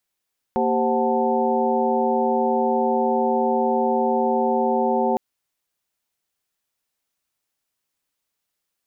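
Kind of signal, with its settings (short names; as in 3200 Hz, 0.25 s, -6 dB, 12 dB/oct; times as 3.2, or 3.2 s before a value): chord A#3/G4/C5/F#5/A5 sine, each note -24 dBFS 4.61 s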